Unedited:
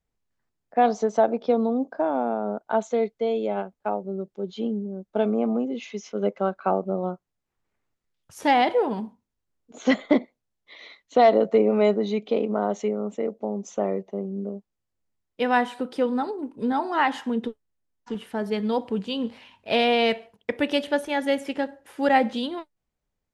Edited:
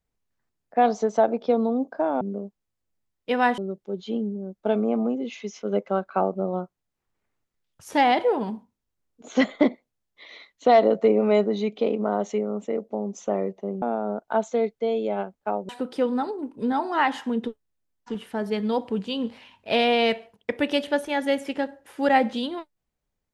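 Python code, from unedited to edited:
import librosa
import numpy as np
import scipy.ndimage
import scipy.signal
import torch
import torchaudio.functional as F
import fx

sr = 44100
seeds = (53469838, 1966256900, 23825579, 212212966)

y = fx.edit(x, sr, fx.swap(start_s=2.21, length_s=1.87, other_s=14.32, other_length_s=1.37), tone=tone)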